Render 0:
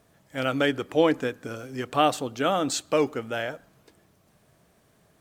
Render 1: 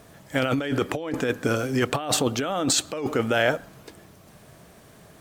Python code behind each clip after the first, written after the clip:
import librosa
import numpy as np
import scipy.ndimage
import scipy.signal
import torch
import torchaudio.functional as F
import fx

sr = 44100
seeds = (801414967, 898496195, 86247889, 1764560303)

y = fx.over_compress(x, sr, threshold_db=-31.0, ratio=-1.0)
y = y * 10.0 ** (6.5 / 20.0)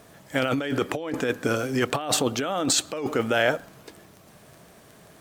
y = fx.low_shelf(x, sr, hz=120.0, db=-6.5)
y = fx.dmg_crackle(y, sr, seeds[0], per_s=12.0, level_db=-35.0)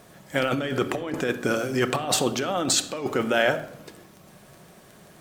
y = fx.room_shoebox(x, sr, seeds[1], volume_m3=2100.0, walls='furnished', distance_m=1.0)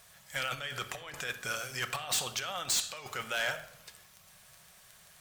y = fx.tone_stack(x, sr, knobs='10-0-10')
y = np.clip(y, -10.0 ** (-26.5 / 20.0), 10.0 ** (-26.5 / 20.0))